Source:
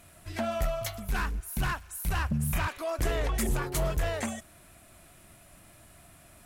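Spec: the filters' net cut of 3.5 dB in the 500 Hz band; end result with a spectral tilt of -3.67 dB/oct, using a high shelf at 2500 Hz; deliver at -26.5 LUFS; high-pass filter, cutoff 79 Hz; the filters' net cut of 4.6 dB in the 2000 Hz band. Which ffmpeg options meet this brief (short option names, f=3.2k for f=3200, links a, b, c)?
-af "highpass=79,equalizer=f=500:t=o:g=-5,equalizer=f=2k:t=o:g=-8,highshelf=f=2.5k:g=4.5,volume=6.5dB"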